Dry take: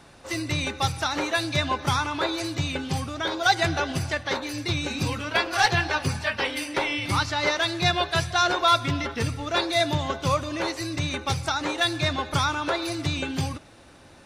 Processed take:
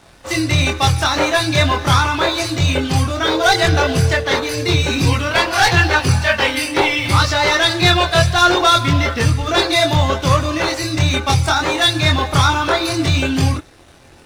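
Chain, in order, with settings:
leveller curve on the samples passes 2
multi-voice chorus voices 6, 0.27 Hz, delay 24 ms, depth 1.7 ms
0:03.23–0:04.81: steady tone 450 Hz −30 dBFS
level +6.5 dB

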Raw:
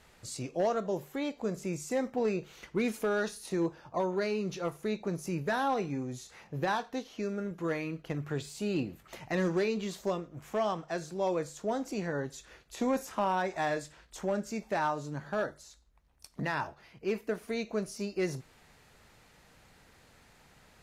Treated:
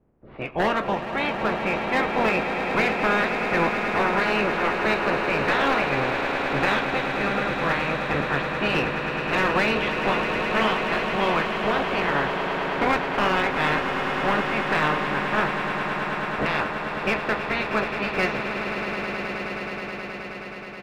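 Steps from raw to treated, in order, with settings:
ceiling on every frequency bin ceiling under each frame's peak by 24 dB
low-pass that shuts in the quiet parts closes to 300 Hz, open at −29.5 dBFS
low-pass filter 2,900 Hz 24 dB per octave
in parallel at −6 dB: wave folding −27 dBFS
on the sum: double-tracking delay 14 ms −12 dB
on a send: echo that builds up and dies away 106 ms, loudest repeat 8, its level −11 dB
on the sum: level +5 dB

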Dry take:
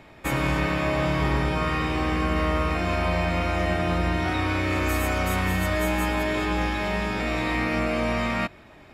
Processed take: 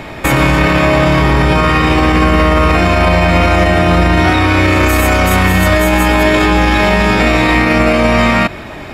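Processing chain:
boost into a limiter +22.5 dB
level −1 dB

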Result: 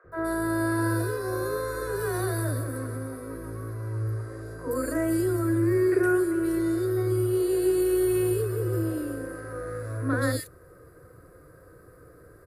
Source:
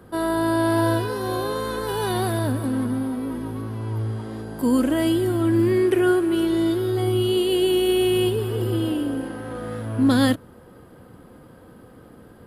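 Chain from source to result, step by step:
phaser with its sweep stopped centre 850 Hz, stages 6
three-band delay without the direct sound mids, lows, highs 40/120 ms, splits 590/2,500 Hz

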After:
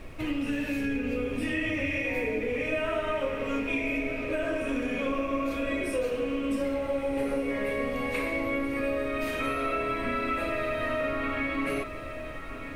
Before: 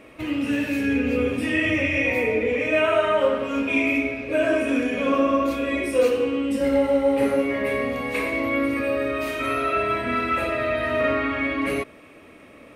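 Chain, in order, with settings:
downward compressor, threshold −25 dBFS, peak gain reduction 10.5 dB
background noise brown −40 dBFS
on a send: feedback delay with all-pass diffusion 1,414 ms, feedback 47%, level −10.5 dB
on the sum: level −2 dB

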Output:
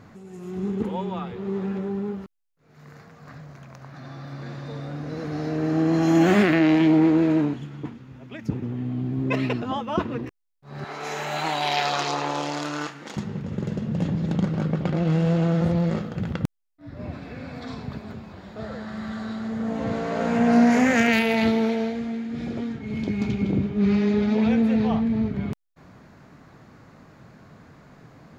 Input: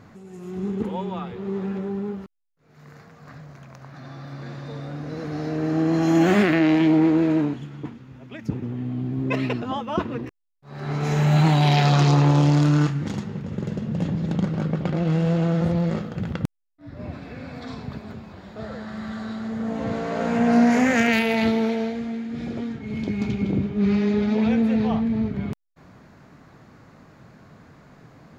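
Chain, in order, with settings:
0:10.84–0:13.17: high-pass filter 530 Hz 12 dB per octave

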